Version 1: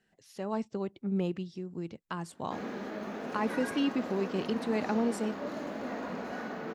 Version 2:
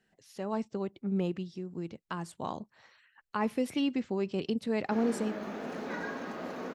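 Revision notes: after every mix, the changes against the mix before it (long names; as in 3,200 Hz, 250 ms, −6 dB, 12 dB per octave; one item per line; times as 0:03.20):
background: entry +2.40 s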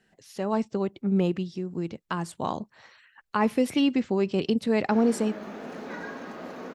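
speech +7.0 dB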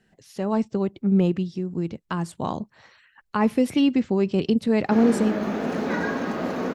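background +9.5 dB
master: add low-shelf EQ 260 Hz +7.5 dB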